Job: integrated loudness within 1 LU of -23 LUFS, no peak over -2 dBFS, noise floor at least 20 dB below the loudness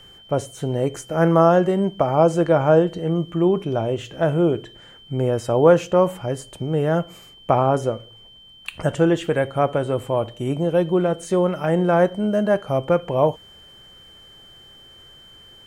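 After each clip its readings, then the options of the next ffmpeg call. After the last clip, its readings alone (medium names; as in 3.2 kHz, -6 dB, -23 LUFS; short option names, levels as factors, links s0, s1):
steady tone 3.1 kHz; tone level -45 dBFS; loudness -20.5 LUFS; peak level -3.0 dBFS; loudness target -23.0 LUFS
-> -af "bandreject=f=3100:w=30"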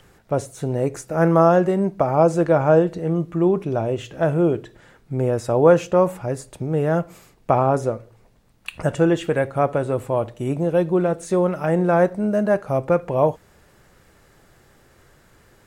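steady tone not found; loudness -20.5 LUFS; peak level -3.0 dBFS; loudness target -23.0 LUFS
-> -af "volume=0.75"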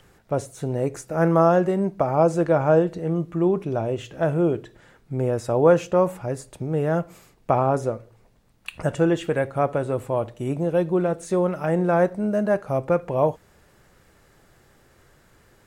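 loudness -23.0 LUFS; peak level -5.5 dBFS; noise floor -58 dBFS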